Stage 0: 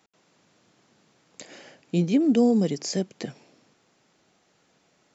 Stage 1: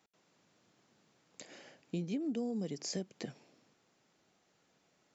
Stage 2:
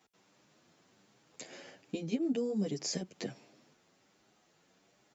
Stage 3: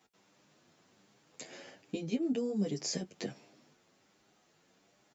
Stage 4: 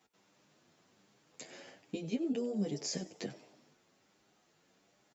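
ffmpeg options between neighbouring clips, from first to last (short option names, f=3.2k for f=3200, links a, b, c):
-af "acompressor=threshold=-26dB:ratio=5,volume=-8dB"
-filter_complex "[0:a]asplit=2[a][b];[b]adelay=8.8,afreqshift=1.3[c];[a][c]amix=inputs=2:normalize=1,volume=7dB"
-filter_complex "[0:a]asplit=2[a][b];[b]adelay=20,volume=-13dB[c];[a][c]amix=inputs=2:normalize=0"
-filter_complex "[0:a]asplit=4[a][b][c][d];[b]adelay=94,afreqshift=130,volume=-17.5dB[e];[c]adelay=188,afreqshift=260,volume=-25.5dB[f];[d]adelay=282,afreqshift=390,volume=-33.4dB[g];[a][e][f][g]amix=inputs=4:normalize=0,volume=-2dB"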